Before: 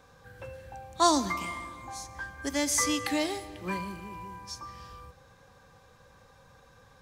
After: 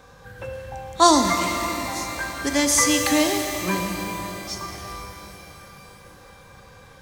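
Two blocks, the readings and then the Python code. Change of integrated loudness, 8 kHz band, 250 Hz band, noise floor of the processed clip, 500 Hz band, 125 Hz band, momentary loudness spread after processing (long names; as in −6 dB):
+9.0 dB, +9.5 dB, +9.5 dB, −48 dBFS, +9.0 dB, +9.5 dB, 19 LU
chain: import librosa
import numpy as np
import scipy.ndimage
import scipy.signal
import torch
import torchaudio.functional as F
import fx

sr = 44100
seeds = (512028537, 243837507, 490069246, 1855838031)

y = fx.rev_shimmer(x, sr, seeds[0], rt60_s=3.9, semitones=12, shimmer_db=-8, drr_db=4.5)
y = y * 10.0 ** (8.0 / 20.0)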